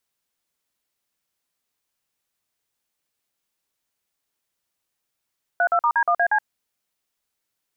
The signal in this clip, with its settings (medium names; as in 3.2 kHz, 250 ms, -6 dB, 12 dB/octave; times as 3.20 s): DTMF "32*D1AC", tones 72 ms, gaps 47 ms, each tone -18.5 dBFS